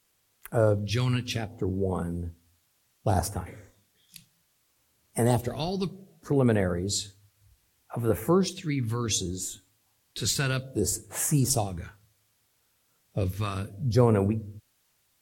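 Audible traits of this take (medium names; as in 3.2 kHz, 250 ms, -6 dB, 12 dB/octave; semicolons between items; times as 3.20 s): phasing stages 2, 0.65 Hz, lowest notch 580–4500 Hz; a quantiser's noise floor 12-bit, dither triangular; AAC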